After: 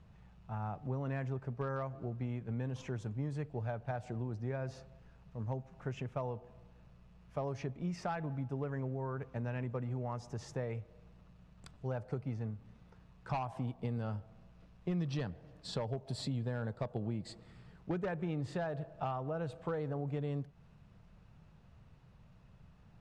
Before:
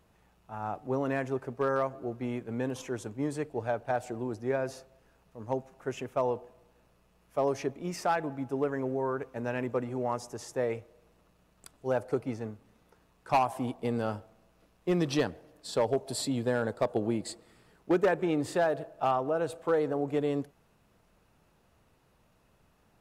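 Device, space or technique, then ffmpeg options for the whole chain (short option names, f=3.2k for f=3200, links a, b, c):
jukebox: -af "lowpass=5.1k,lowshelf=f=220:t=q:w=1.5:g=9.5,acompressor=threshold=-36dB:ratio=3,volume=-1dB"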